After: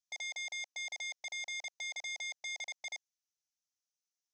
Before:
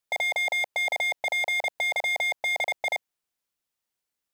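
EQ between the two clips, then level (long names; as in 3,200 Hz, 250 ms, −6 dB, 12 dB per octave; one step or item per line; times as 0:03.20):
resonant band-pass 6,100 Hz, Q 5.5
high-frequency loss of the air 100 metres
+9.0 dB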